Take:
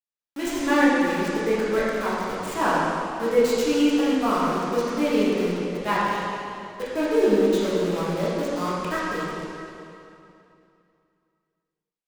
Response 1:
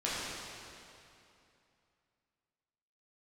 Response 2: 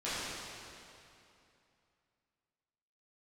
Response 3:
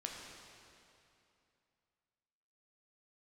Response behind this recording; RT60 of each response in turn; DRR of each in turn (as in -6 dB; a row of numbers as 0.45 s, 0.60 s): 1; 2.7 s, 2.7 s, 2.7 s; -9.0 dB, -13.5 dB, -0.5 dB